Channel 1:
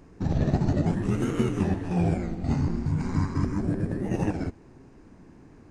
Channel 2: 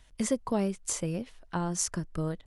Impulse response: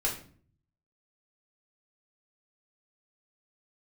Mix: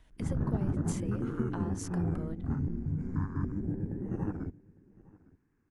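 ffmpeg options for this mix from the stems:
-filter_complex "[0:a]afwtdn=0.02,equalizer=f=630:t=o:w=0.67:g=-11,equalizer=f=1.6k:t=o:w=0.67:g=7,equalizer=f=4k:t=o:w=0.67:g=-11,volume=-6.5dB,asplit=2[a][b];[b]volume=-23.5dB[c];[1:a]equalizer=f=6.8k:t=o:w=2.4:g=-9.5,acompressor=threshold=-36dB:ratio=6,volume=-1.5dB[d];[c]aecho=0:1:857:1[e];[a][d][e]amix=inputs=3:normalize=0"

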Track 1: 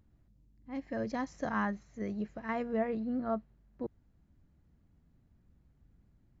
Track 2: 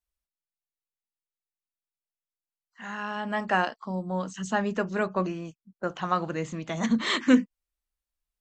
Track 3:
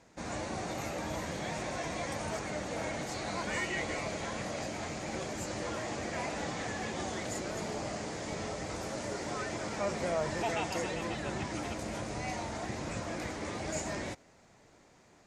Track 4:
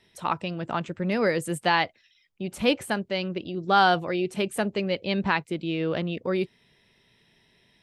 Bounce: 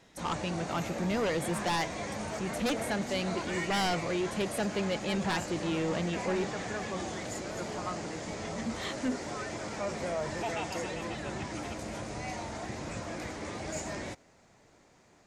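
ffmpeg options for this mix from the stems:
-filter_complex "[0:a]volume=-8dB[a];[1:a]adelay=1750,volume=-11.5dB[b];[2:a]volume=-0.5dB[c];[3:a]aeval=exprs='0.422*sin(PI/2*3.55*val(0)/0.422)':c=same,volume=-17dB[d];[a][b][c][d]amix=inputs=4:normalize=0,asoftclip=type=tanh:threshold=-23dB"

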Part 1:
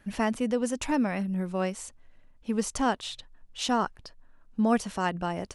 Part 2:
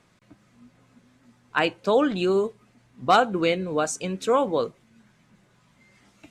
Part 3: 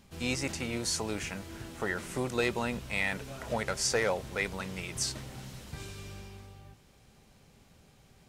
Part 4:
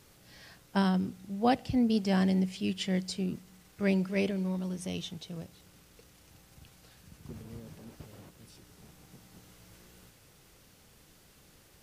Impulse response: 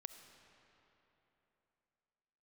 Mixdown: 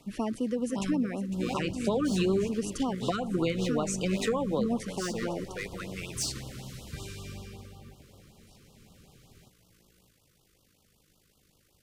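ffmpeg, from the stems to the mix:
-filter_complex "[0:a]equalizer=f=330:t=o:w=0.73:g=10,volume=-5.5dB,asplit=3[a][b][c];[b]volume=-13dB[d];[1:a]volume=0dB,asplit=2[e][f];[f]volume=-9.5dB[g];[2:a]asoftclip=type=hard:threshold=-27.5dB,adelay=1200,volume=0dB,asplit=2[h][i];[i]volume=-4.5dB[j];[3:a]tremolo=f=51:d=0.571,volume=-5.5dB,asplit=2[k][l];[l]volume=-14dB[m];[c]apad=whole_len=418342[n];[h][n]sidechaincompress=threshold=-38dB:ratio=8:attack=16:release=999[o];[4:a]atrim=start_sample=2205[p];[g][j][m]amix=inputs=3:normalize=0[q];[q][p]afir=irnorm=-1:irlink=0[r];[d]aecho=0:1:505:1[s];[a][e][o][k][r][s]amix=inputs=6:normalize=0,acrossover=split=220[t][u];[u]acompressor=threshold=-27dB:ratio=10[v];[t][v]amix=inputs=2:normalize=0,afftfilt=real='re*(1-between(b*sr/1024,710*pow(2000/710,0.5+0.5*sin(2*PI*5.3*pts/sr))/1.41,710*pow(2000/710,0.5+0.5*sin(2*PI*5.3*pts/sr))*1.41))':imag='im*(1-between(b*sr/1024,710*pow(2000/710,0.5+0.5*sin(2*PI*5.3*pts/sr))/1.41,710*pow(2000/710,0.5+0.5*sin(2*PI*5.3*pts/sr))*1.41))':win_size=1024:overlap=0.75"

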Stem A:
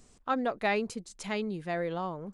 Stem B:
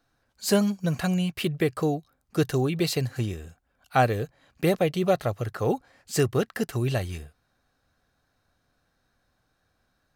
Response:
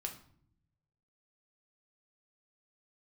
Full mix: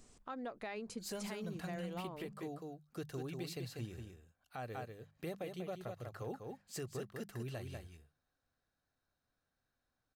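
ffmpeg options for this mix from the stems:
-filter_complex "[0:a]acompressor=threshold=-36dB:ratio=3,volume=-3dB[a];[1:a]adelay=600,volume=-15.5dB,asplit=2[b][c];[c]volume=-6.5dB,aecho=0:1:193:1[d];[a][b][d]amix=inputs=3:normalize=0,bandreject=f=50:t=h:w=6,bandreject=f=100:t=h:w=6,bandreject=f=150:t=h:w=6,bandreject=f=200:t=h:w=6,alimiter=level_in=9.5dB:limit=-24dB:level=0:latency=1:release=250,volume=-9.5dB"

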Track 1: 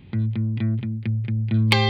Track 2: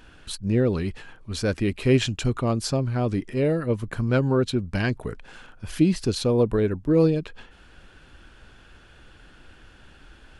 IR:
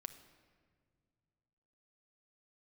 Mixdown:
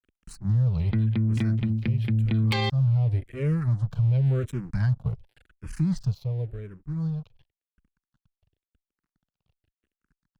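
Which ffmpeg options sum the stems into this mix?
-filter_complex "[0:a]acontrast=63,adelay=800,volume=-4dB[a];[1:a]lowshelf=f=190:t=q:w=3:g=11.5,aeval=exprs='sgn(val(0))*max(abs(val(0))-0.0266,0)':c=same,asplit=2[b][c];[c]afreqshift=-0.92[d];[b][d]amix=inputs=2:normalize=1,volume=5.5dB,afade=t=out:st=1.26:d=0.39:silence=0.298538,afade=t=in:st=2.58:d=0.74:silence=0.251189,afade=t=out:st=5.92:d=0.23:silence=0.266073[e];[a][e]amix=inputs=2:normalize=0,alimiter=limit=-17dB:level=0:latency=1:release=139"

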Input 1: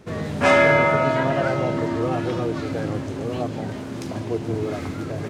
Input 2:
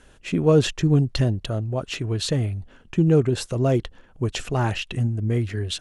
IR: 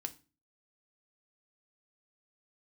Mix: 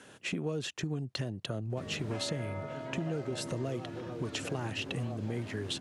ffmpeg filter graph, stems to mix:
-filter_complex "[0:a]acrossover=split=950|2800[a][b][c];[a]acompressor=threshold=-26dB:ratio=4[d];[b]acompressor=threshold=-42dB:ratio=4[e];[c]acompressor=threshold=-49dB:ratio=4[f];[d][e][f]amix=inputs=3:normalize=0,adelay=1700,volume=-12dB[g];[1:a]highpass=f=120:w=0.5412,highpass=f=120:w=1.3066,acompressor=threshold=-35dB:ratio=2.5,volume=1.5dB[h];[g][h]amix=inputs=2:normalize=0,acrossover=split=480|1900[i][j][k];[i]acompressor=threshold=-33dB:ratio=4[l];[j]acompressor=threshold=-41dB:ratio=4[m];[k]acompressor=threshold=-34dB:ratio=4[n];[l][m][n]amix=inputs=3:normalize=0"

